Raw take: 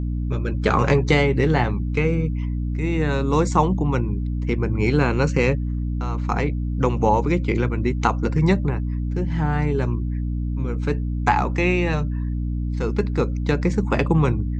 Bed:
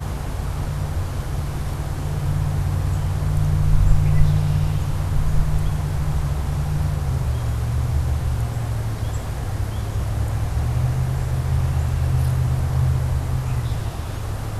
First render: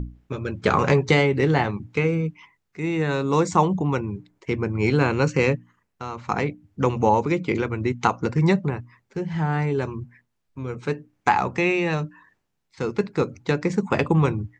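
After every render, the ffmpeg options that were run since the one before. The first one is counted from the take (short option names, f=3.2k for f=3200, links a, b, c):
-af "bandreject=f=60:t=h:w=6,bandreject=f=120:t=h:w=6,bandreject=f=180:t=h:w=6,bandreject=f=240:t=h:w=6,bandreject=f=300:t=h:w=6"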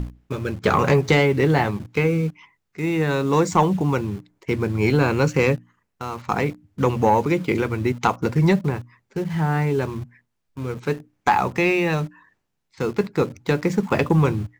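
-filter_complex "[0:a]asplit=2[a][b];[b]acrusher=bits=5:mix=0:aa=0.000001,volume=-9.5dB[c];[a][c]amix=inputs=2:normalize=0,asoftclip=type=tanh:threshold=-6.5dB"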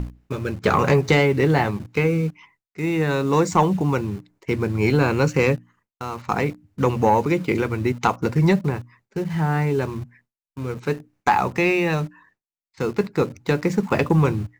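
-af "bandreject=f=3.3k:w=21,agate=range=-33dB:threshold=-51dB:ratio=3:detection=peak"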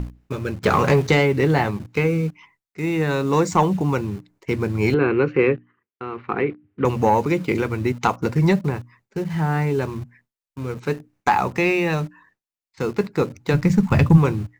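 -filter_complex "[0:a]asettb=1/sr,asplit=3[a][b][c];[a]atrim=end=0.634[d];[b]atrim=start=0.63:end=1.07,asetpts=PTS-STARTPTS,afade=t=in:d=0.004:c=qsin,afade=t=out:st=0.436:d=0.004:c=qsin,aeval=exprs='val(0)+0.5*0.0282*sgn(val(0))':c=same[e];[c]atrim=start=1.066[f];[d][e]acrossfade=d=0.004:c1=hsin:c2=qsin[g];[g][f]acrossfade=d=0.004:c1=qsin:c2=hsin,asettb=1/sr,asplit=3[h][i][j];[h]atrim=end=4.944[k];[i]atrim=start=4.94:end=6.85,asetpts=PTS-STARTPTS,afade=t=in:d=0.004:c=qsin,afade=t=out:st=1.906:d=0.004:c=qsin,highpass=140,equalizer=f=170:t=q:w=4:g=-8,equalizer=f=380:t=q:w=4:g=9,equalizer=f=610:t=q:w=4:g=-8,equalizer=f=900:t=q:w=4:g=-7,lowpass=f=2.8k:w=0.5412,lowpass=f=2.8k:w=1.3066[l];[j]atrim=start=6.846[m];[k][l]acrossfade=d=0.004:c1=hsin:c2=qsin[n];[n][m]acrossfade=d=0.004:c1=qsin:c2=hsin,asplit=3[o][p][q];[o]afade=t=out:st=13.53:d=0.02[r];[p]asubboost=boost=8:cutoff=130,afade=t=in:st=13.53:d=0.02,afade=t=out:st=14.16:d=0.02[s];[q]afade=t=in:st=14.16:d=0.02[t];[r][s][t]amix=inputs=3:normalize=0"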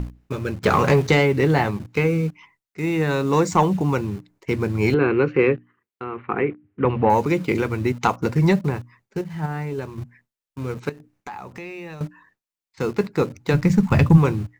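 -filter_complex "[0:a]asettb=1/sr,asplit=3[a][b][c];[a]atrim=end=6.044[d];[b]atrim=start=6.04:end=7.1,asetpts=PTS-STARTPTS,afade=t=in:d=0.004:c=qsin,afade=t=out:st=1.056:d=0.004:c=qsin,lowpass=f=3k:w=0.5412,lowpass=f=3k:w=1.3066[e];[c]atrim=start=7.096[f];[d][e]acrossfade=d=0.004:c1=hsin:c2=qsin[g];[g][f]acrossfade=d=0.004:c1=qsin:c2=hsin,asettb=1/sr,asplit=3[h][i][j];[h]atrim=end=9.214[k];[i]atrim=start=9.21:end=9.98,asetpts=PTS-STARTPTS,afade=t=in:d=0.004:c=qsin,afade=t=out:st=0.766:d=0.004:c=qsin,agate=range=-7dB:threshold=-20dB:ratio=16:release=100:detection=peak[l];[j]atrim=start=9.976[m];[k][l]acrossfade=d=0.004:c1=hsin:c2=qsin[n];[n][m]acrossfade=d=0.004:c1=qsin:c2=hsin,asettb=1/sr,asplit=3[o][p][q];[o]atrim=end=10.894[r];[p]atrim=start=10.89:end=12.01,asetpts=PTS-STARTPTS,afade=t=in:d=0.004:c=qsin,afade=t=out:st=1.116:d=0.004:c=qsin,acompressor=threshold=-38dB:ratio=3:attack=3.2:release=140:knee=1:detection=peak[s];[q]atrim=start=12.006[t];[r][s]acrossfade=d=0.004:c1=hsin:c2=qsin[u];[u][t]acrossfade=d=0.004:c1=qsin:c2=hsin"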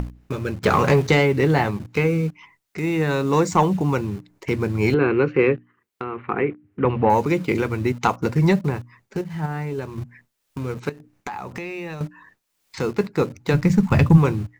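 -af "acompressor=mode=upward:threshold=-25dB:ratio=2.5"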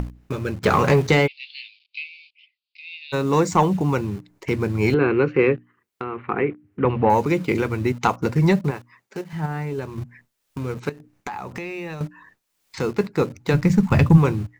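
-filter_complex "[0:a]asplit=3[a][b][c];[a]afade=t=out:st=1.26:d=0.02[d];[b]asuperpass=centerf=3400:order=12:qfactor=1.4,afade=t=in:st=1.26:d=0.02,afade=t=out:st=3.12:d=0.02[e];[c]afade=t=in:st=3.12:d=0.02[f];[d][e][f]amix=inputs=3:normalize=0,asettb=1/sr,asplit=3[g][h][i];[g]atrim=end=8.714[j];[h]atrim=start=8.71:end=9.33,asetpts=PTS-STARTPTS,afade=t=in:d=0.004:c=qsin,afade=t=out:st=0.616:d=0.004:c=qsin,highpass=f=430:p=1[k];[i]atrim=start=9.326[l];[j][k]acrossfade=d=0.004:c1=hsin:c2=qsin[m];[m][l]acrossfade=d=0.004:c1=qsin:c2=hsin"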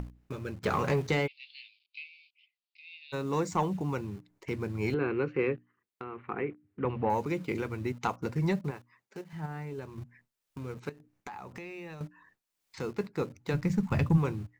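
-af "volume=-11.5dB"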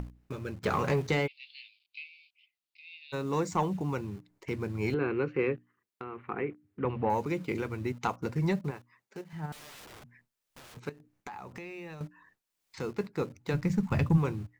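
-filter_complex "[0:a]asettb=1/sr,asplit=3[a][b][c];[a]atrim=end=9.524[d];[b]atrim=start=9.52:end=10.77,asetpts=PTS-STARTPTS,afade=t=in:d=0.004:c=qsin,afade=t=out:st=1.246:d=0.004:c=qsin,aeval=exprs='(mod(178*val(0)+1,2)-1)/178':c=same[e];[c]atrim=start=10.766[f];[d][e]acrossfade=d=0.004:c1=hsin:c2=qsin[g];[g][f]acrossfade=d=0.004:c1=qsin:c2=hsin"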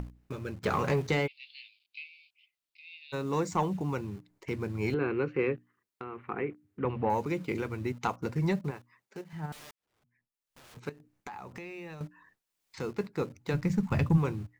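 -filter_complex "[0:a]asplit=2[a][b];[a]atrim=end=9.71,asetpts=PTS-STARTPTS,afade=t=out:st=9.706:d=0.004:c=hsin[c];[b]atrim=start=9.71,asetpts=PTS-STARTPTS,afade=t=in:d=1.15:c=qua[d];[c][d]concat=n=2:v=0:a=1"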